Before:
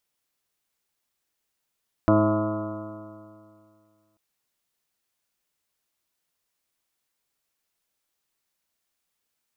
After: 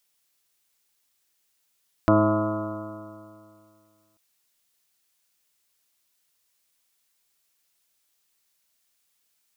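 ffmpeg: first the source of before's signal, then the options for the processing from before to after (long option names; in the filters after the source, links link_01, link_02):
-f lavfi -i "aevalsrc='0.0794*pow(10,-3*t/2.31)*sin(2*PI*105.09*t)+0.0668*pow(10,-3*t/2.31)*sin(2*PI*210.75*t)+0.133*pow(10,-3*t/2.31)*sin(2*PI*317.54*t)+0.02*pow(10,-3*t/2.31)*sin(2*PI*426.01*t)+0.0422*pow(10,-3*t/2.31)*sin(2*PI*536.68*t)+0.1*pow(10,-3*t/2.31)*sin(2*PI*650.09*t)+0.0112*pow(10,-3*t/2.31)*sin(2*PI*766.73*t)+0.0158*pow(10,-3*t/2.31)*sin(2*PI*887.07*t)+0.0422*pow(10,-3*t/2.31)*sin(2*PI*1011.55*t)+0.0237*pow(10,-3*t/2.31)*sin(2*PI*1140.59*t)+0.0335*pow(10,-3*t/2.31)*sin(2*PI*1274.59*t)+0.0168*pow(10,-3*t/2.31)*sin(2*PI*1413.9*t)':duration=2.09:sample_rate=44100"
-af "highshelf=frequency=2000:gain=9"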